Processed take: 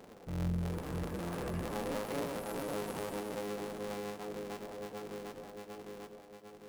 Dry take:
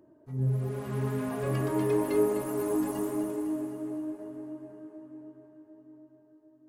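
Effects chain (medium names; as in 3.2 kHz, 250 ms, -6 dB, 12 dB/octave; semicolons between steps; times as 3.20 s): cycle switcher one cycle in 3, inverted; compression 3:1, threshold -47 dBFS, peak gain reduction 19 dB; on a send: reverberation RT60 0.45 s, pre-delay 3 ms, DRR 9.5 dB; on the sum: trim +5 dB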